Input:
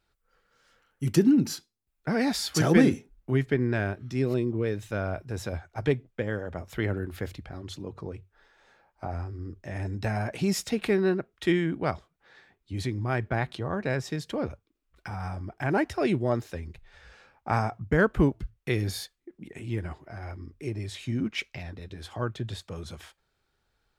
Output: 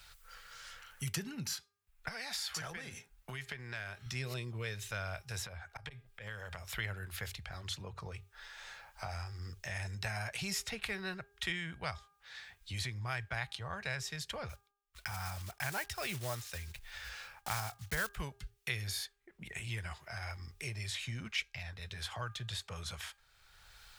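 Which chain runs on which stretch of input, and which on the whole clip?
2.08–4.06 HPF 230 Hz 6 dB/oct + compressor, threshold -33 dBFS
5.45–6.78 bell 6400 Hz -4.5 dB 0.3 oct + auto swell 0.275 s + compressor 10:1, threshold -36 dBFS
14.49–18.17 block floating point 5-bit + gate with hold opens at -50 dBFS, closes at -57 dBFS
whole clip: passive tone stack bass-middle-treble 10-0-10; de-hum 403.7 Hz, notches 4; three-band squash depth 70%; gain +2.5 dB

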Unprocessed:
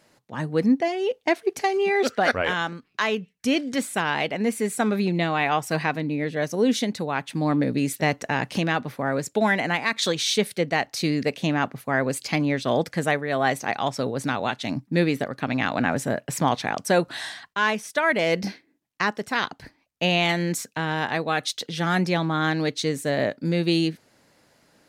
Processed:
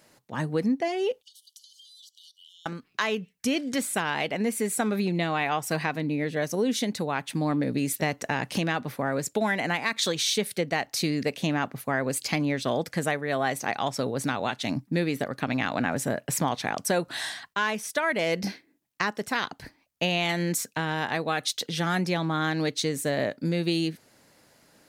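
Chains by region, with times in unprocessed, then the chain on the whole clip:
1.22–2.66 brick-wall FIR high-pass 2900 Hz + compressor 20:1, threshold -49 dBFS
whole clip: high shelf 8800 Hz +8 dB; compressor 2.5:1, threshold -24 dBFS

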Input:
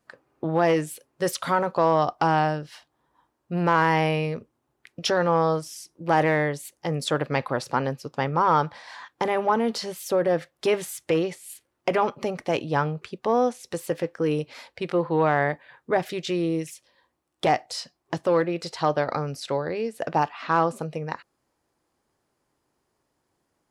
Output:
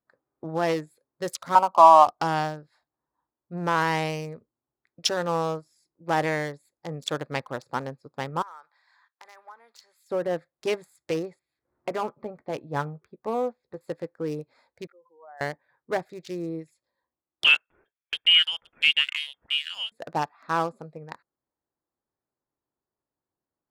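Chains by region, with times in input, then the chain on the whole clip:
1.55–2.07 steep high-pass 190 Hz 48 dB/oct + band shelf 700 Hz +12 dB + fixed phaser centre 1800 Hz, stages 6
8.42–10.11 HPF 1400 Hz + compressor 2.5:1, threshold -30 dBFS
11.39–13.81 upward compressor, threshold -43 dBFS + air absorption 310 m + doubler 14 ms -12 dB
14.87–15.41 spectral contrast raised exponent 2.6 + HPF 1400 Hz
17.44–19.92 notch 250 Hz, Q 7 + inverted band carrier 3400 Hz
whole clip: Wiener smoothing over 15 samples; high shelf 3100 Hz +12 dB; upward expander 1.5:1, over -41 dBFS

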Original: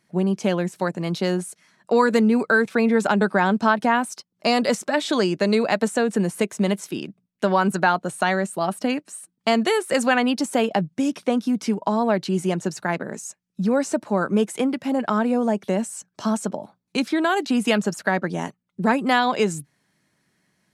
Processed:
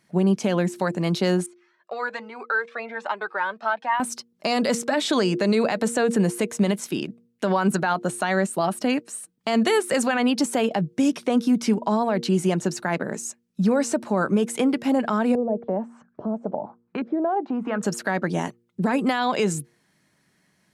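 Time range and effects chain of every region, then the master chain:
1.46–4 BPF 780–4600 Hz + high shelf 3400 Hz -11 dB + cascading flanger rising 1.2 Hz
15.35–17.83 compressor 2:1, threshold -32 dBFS + LFO low-pass saw up 1.2 Hz 450–1600 Hz
whole clip: de-hum 117.6 Hz, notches 4; limiter -14.5 dBFS; gain +2.5 dB

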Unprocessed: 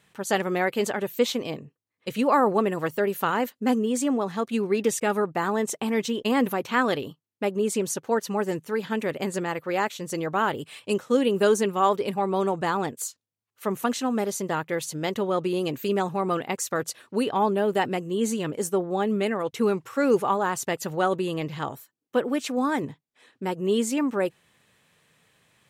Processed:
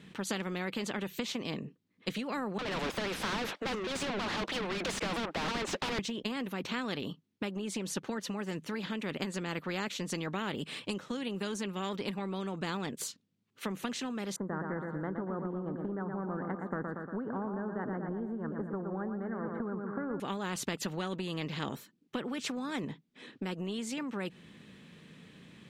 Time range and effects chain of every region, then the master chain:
2.58–5.99 ladder high-pass 510 Hz, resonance 35% + overdrive pedal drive 39 dB, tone 1200 Hz, clips at -16 dBFS + shaped vibrato saw down 3.1 Hz, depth 250 cents
14.36–20.2 elliptic low-pass 1600 Hz + feedback echo 0.117 s, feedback 46%, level -8 dB
whole clip: EQ curve 120 Hz 0 dB, 190 Hz +15 dB, 700 Hz -8 dB, 3600 Hz -3 dB, 14000 Hz -19 dB; compressor, threshold -23 dBFS; spectral compressor 2:1; gain -4.5 dB

